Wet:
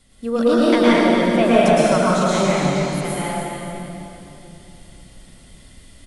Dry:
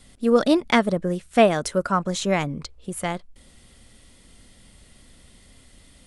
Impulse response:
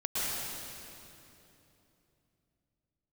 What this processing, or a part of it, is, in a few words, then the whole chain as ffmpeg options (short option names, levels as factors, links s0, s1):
cave: -filter_complex "[0:a]aecho=1:1:288:0.335[s0];[1:a]atrim=start_sample=2205[s1];[s0][s1]afir=irnorm=-1:irlink=0,volume=0.668"